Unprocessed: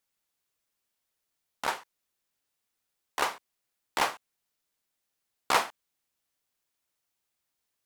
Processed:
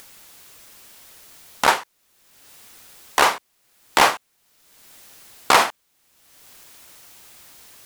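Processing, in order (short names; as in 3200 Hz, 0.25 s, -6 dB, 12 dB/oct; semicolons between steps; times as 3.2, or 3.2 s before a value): in parallel at +1.5 dB: upward compressor, threshold -36 dBFS; on the sum: limiter -9.5 dBFS, peak gain reduction 7 dB; gain +8 dB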